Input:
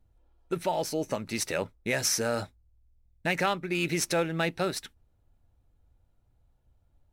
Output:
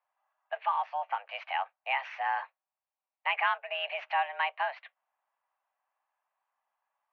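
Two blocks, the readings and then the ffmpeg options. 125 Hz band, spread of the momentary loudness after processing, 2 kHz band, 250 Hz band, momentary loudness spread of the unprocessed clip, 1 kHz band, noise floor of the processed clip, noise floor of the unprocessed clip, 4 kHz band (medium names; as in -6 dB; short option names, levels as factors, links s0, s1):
under -40 dB, 7 LU, +0.5 dB, under -40 dB, 8 LU, +4.5 dB, under -85 dBFS, -68 dBFS, -5.0 dB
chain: -af "highpass=f=430:t=q:w=0.5412,highpass=f=430:t=q:w=1.307,lowpass=f=2600:t=q:w=0.5176,lowpass=f=2600:t=q:w=0.7071,lowpass=f=2600:t=q:w=1.932,afreqshift=280"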